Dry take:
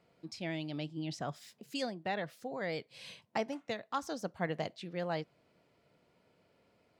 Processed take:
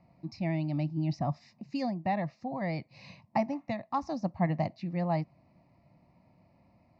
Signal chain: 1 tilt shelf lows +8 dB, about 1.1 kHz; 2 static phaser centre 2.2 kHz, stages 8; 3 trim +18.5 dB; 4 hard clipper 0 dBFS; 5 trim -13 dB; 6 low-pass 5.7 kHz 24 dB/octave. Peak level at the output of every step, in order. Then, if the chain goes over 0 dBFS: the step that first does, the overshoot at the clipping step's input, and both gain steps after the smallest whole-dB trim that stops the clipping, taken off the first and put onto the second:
-18.5 dBFS, -21.0 dBFS, -2.5 dBFS, -2.5 dBFS, -15.5 dBFS, -15.5 dBFS; nothing clips

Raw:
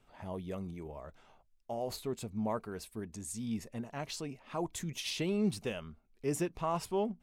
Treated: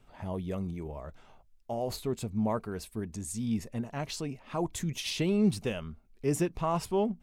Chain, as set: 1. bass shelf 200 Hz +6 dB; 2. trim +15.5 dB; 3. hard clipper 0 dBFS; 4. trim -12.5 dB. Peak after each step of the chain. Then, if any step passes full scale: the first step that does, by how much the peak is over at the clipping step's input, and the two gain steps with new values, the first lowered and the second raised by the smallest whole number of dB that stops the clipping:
-19.0 dBFS, -3.5 dBFS, -3.5 dBFS, -16.0 dBFS; nothing clips

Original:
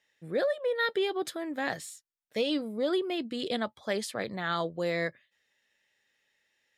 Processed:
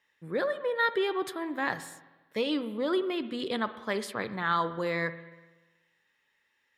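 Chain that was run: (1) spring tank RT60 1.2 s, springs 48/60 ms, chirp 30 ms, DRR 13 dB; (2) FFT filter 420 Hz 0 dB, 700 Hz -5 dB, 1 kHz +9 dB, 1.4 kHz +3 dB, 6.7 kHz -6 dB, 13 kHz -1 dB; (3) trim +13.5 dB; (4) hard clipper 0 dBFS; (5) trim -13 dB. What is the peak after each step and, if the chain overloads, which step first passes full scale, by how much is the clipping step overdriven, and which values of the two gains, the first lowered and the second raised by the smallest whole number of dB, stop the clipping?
-17.0 dBFS, -15.5 dBFS, -2.0 dBFS, -2.0 dBFS, -15.0 dBFS; nothing clips

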